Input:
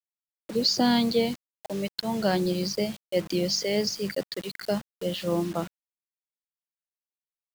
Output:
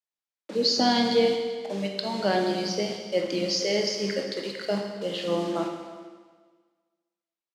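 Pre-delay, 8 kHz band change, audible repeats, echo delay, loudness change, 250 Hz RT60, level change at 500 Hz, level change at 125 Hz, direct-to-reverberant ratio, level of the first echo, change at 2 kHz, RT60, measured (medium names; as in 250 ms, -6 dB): 15 ms, -0.5 dB, 1, 390 ms, +1.0 dB, 1.5 s, +2.5 dB, -4.0 dB, 1.5 dB, -21.0 dB, +2.5 dB, 1.5 s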